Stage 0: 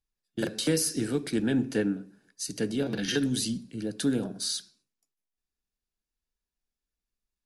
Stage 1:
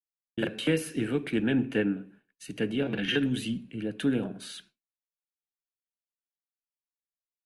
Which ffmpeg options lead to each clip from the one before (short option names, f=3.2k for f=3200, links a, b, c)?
-af "highshelf=f=3.7k:t=q:w=3:g=-10.5,agate=range=-33dB:threshold=-51dB:ratio=3:detection=peak"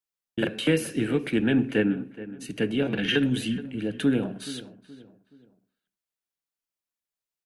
-filter_complex "[0:a]asplit=2[a][b];[b]adelay=424,lowpass=f=2k:p=1,volume=-15.5dB,asplit=2[c][d];[d]adelay=424,lowpass=f=2k:p=1,volume=0.38,asplit=2[e][f];[f]adelay=424,lowpass=f=2k:p=1,volume=0.38[g];[a][c][e][g]amix=inputs=4:normalize=0,volume=3.5dB"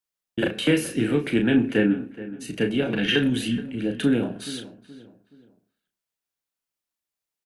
-filter_complex "[0:a]asplit=2[a][b];[b]adelay=34,volume=-6.5dB[c];[a][c]amix=inputs=2:normalize=0,volume=2dB"